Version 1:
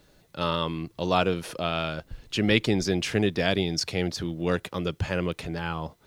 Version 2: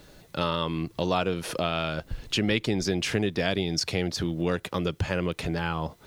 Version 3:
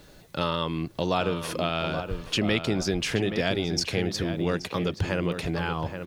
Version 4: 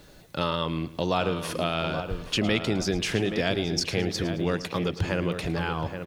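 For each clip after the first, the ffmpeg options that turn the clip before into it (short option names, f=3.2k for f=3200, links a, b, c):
-af "acompressor=threshold=-34dB:ratio=2.5,volume=7.5dB"
-filter_complex "[0:a]asplit=2[a][b];[b]adelay=826,lowpass=f=2.5k:p=1,volume=-8dB,asplit=2[c][d];[d]adelay=826,lowpass=f=2.5k:p=1,volume=0.29,asplit=2[e][f];[f]adelay=826,lowpass=f=2.5k:p=1,volume=0.29[g];[a][c][e][g]amix=inputs=4:normalize=0"
-af "aecho=1:1:109|218|327|436:0.158|0.0666|0.028|0.0117"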